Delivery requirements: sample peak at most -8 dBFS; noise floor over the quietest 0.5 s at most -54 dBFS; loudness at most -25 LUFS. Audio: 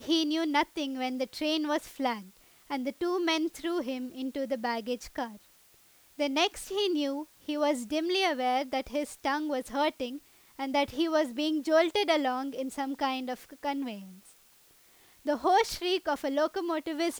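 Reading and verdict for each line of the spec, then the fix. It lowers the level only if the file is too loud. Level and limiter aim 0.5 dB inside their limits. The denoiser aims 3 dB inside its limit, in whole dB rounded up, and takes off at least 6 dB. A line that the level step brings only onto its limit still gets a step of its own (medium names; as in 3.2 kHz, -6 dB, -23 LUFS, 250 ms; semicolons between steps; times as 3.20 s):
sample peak -14.0 dBFS: pass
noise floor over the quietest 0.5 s -61 dBFS: pass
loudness -30.5 LUFS: pass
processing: none needed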